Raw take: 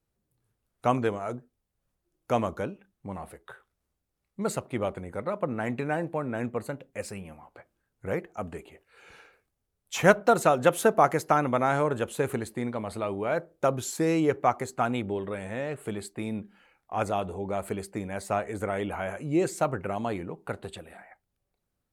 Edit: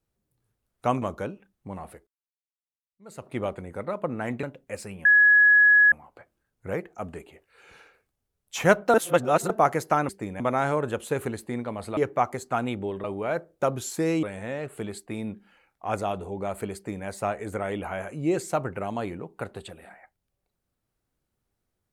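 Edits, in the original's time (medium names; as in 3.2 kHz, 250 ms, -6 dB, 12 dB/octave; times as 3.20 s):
1.02–2.41 s: delete
3.46–4.68 s: fade in exponential
5.82–6.69 s: delete
7.31 s: add tone 1.68 kHz -13 dBFS 0.87 s
10.33–10.89 s: reverse
14.24–15.31 s: move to 13.05 s
17.83–18.14 s: copy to 11.48 s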